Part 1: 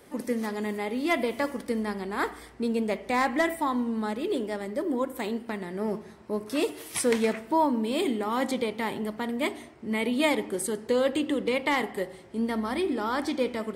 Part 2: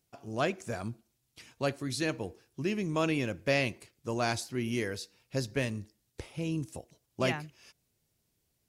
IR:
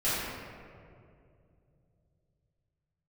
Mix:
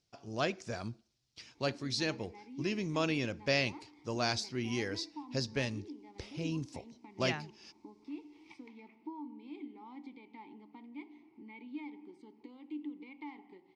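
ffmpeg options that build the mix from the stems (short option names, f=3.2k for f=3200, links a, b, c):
-filter_complex "[0:a]acompressor=threshold=-38dB:ratio=3,asplit=3[a][b][c];[a]bandpass=f=300:t=q:w=8,volume=0dB[d];[b]bandpass=f=870:t=q:w=8,volume=-6dB[e];[c]bandpass=f=2.24k:t=q:w=8,volume=-9dB[f];[d][e][f]amix=inputs=3:normalize=0,adelay=1550,volume=-1.5dB[g];[1:a]volume=-3.5dB[h];[g][h]amix=inputs=2:normalize=0,lowpass=f=5.1k:t=q:w=2.5"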